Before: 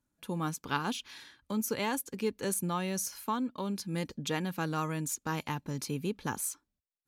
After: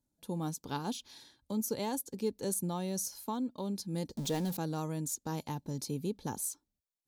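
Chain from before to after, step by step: 4.17–4.57 zero-crossing step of -35.5 dBFS; band shelf 1800 Hz -11 dB; gain -1.5 dB

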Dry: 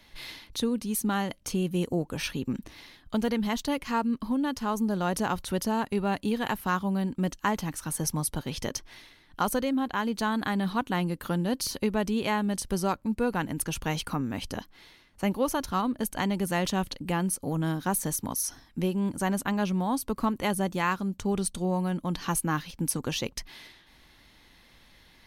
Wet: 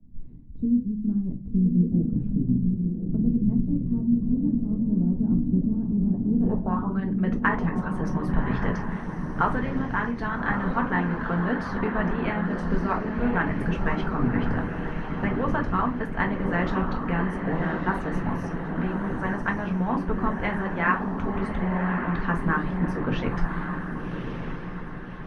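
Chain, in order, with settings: low shelf 170 Hz +12 dB; shoebox room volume 230 m³, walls furnished, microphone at 1.6 m; low-pass sweep 210 Hz -> 1700 Hz, 6.26–7; on a send: diffused feedback echo 1.139 s, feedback 46%, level -4 dB; on the sum: harmonic-percussive split harmonic -11 dB

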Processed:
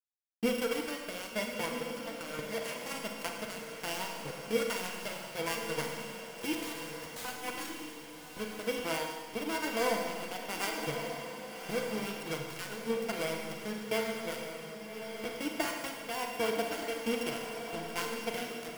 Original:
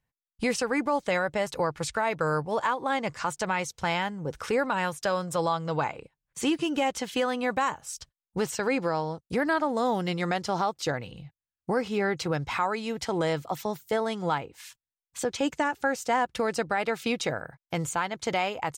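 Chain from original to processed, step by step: sample sorter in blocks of 16 samples; notch 3700 Hz, Q 16; reverb removal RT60 0.5 s; ripple EQ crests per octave 1.8, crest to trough 10 dB; 1.84–2.39 compressor 6:1, threshold -30 dBFS, peak gain reduction 8.5 dB; flange 1.2 Hz, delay 0.8 ms, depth 3.7 ms, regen +50%; 6.53–7.25 wrapped overs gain 30.5 dB; rotary speaker horn 1.2 Hz; crossover distortion -37.5 dBFS; diffused feedback echo 1.201 s, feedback 42%, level -7 dB; Schroeder reverb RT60 1.5 s, combs from 33 ms, DRR 2.5 dB

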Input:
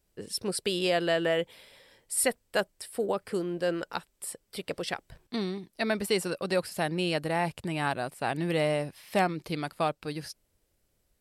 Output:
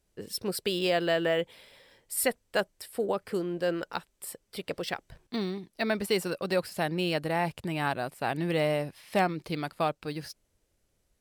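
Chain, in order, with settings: decimation joined by straight lines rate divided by 2×

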